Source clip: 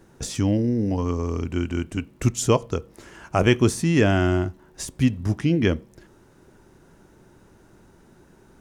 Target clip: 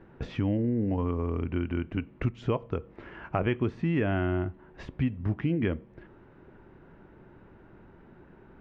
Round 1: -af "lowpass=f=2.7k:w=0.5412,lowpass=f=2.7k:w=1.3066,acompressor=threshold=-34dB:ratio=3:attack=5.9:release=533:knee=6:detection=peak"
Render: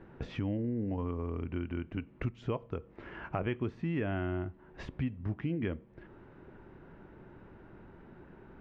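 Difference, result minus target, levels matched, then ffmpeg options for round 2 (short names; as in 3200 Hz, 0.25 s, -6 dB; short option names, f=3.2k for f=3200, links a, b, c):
compressor: peak gain reduction +6.5 dB
-af "lowpass=f=2.7k:w=0.5412,lowpass=f=2.7k:w=1.3066,acompressor=threshold=-24.5dB:ratio=3:attack=5.9:release=533:knee=6:detection=peak"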